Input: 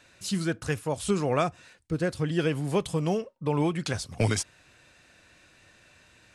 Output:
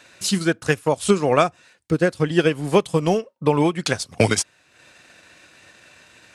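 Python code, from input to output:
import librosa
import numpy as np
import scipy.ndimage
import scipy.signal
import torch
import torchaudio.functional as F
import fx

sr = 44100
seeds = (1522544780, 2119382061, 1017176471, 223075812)

y = fx.highpass(x, sr, hz=210.0, slope=6)
y = fx.transient(y, sr, attack_db=4, sustain_db=-8)
y = y * 10.0 ** (8.5 / 20.0)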